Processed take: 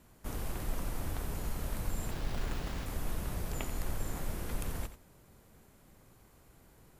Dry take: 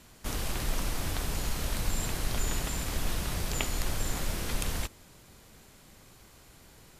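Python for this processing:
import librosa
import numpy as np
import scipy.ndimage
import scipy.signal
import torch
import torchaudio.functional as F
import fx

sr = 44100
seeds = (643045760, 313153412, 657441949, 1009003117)

y = fx.peak_eq(x, sr, hz=4400.0, db=-10.0, octaves=2.4)
y = fx.sample_hold(y, sr, seeds[0], rate_hz=8600.0, jitter_pct=20, at=(2.11, 2.86))
y = y + 10.0 ** (-12.0 / 20.0) * np.pad(y, (int(87 * sr / 1000.0), 0))[:len(y)]
y = y * 10.0 ** (-4.0 / 20.0)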